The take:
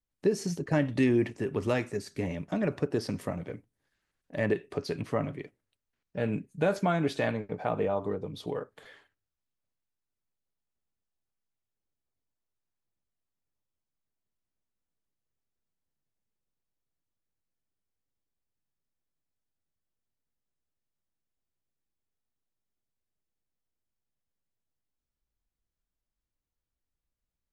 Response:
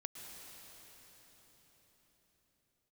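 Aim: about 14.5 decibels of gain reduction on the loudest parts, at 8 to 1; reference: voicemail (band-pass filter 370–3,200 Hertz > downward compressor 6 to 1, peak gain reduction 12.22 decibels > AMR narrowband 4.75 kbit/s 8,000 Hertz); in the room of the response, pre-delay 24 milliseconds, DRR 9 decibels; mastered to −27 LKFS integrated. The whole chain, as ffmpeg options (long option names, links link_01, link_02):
-filter_complex "[0:a]acompressor=threshold=-36dB:ratio=8,asplit=2[link_01][link_02];[1:a]atrim=start_sample=2205,adelay=24[link_03];[link_02][link_03]afir=irnorm=-1:irlink=0,volume=-6.5dB[link_04];[link_01][link_04]amix=inputs=2:normalize=0,highpass=370,lowpass=3200,acompressor=threshold=-48dB:ratio=6,volume=29dB" -ar 8000 -c:a libopencore_amrnb -b:a 4750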